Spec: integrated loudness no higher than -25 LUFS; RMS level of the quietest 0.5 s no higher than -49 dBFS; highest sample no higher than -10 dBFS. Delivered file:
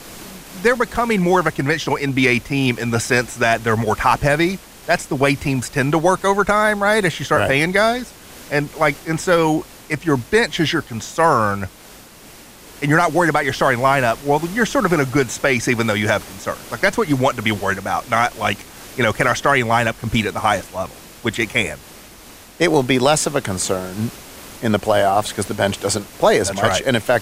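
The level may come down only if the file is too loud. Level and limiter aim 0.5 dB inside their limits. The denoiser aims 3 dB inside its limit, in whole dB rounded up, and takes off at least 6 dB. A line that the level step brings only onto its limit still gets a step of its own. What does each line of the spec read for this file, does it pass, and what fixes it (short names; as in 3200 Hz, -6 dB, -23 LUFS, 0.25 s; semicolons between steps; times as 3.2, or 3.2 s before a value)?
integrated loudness -18.0 LUFS: fail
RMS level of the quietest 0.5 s -42 dBFS: fail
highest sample -1.5 dBFS: fail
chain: gain -7.5 dB; limiter -10.5 dBFS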